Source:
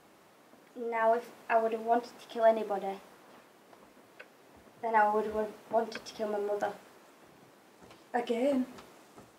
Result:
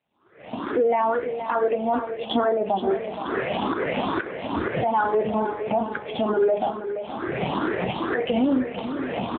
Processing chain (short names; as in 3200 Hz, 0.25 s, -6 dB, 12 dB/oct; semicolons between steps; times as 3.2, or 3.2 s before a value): moving spectral ripple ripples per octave 0.5, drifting +2.3 Hz, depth 15 dB; recorder AGC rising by 34 dB/s; expander -38 dBFS; 2.44–2.91 LPF 1300 Hz 12 dB/oct; low shelf 93 Hz +5.5 dB; limiter -19.5 dBFS, peak gain reduction 11 dB; feedback echo 0.473 s, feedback 46%, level -9.5 dB; gain +6 dB; AMR-NB 7.4 kbps 8000 Hz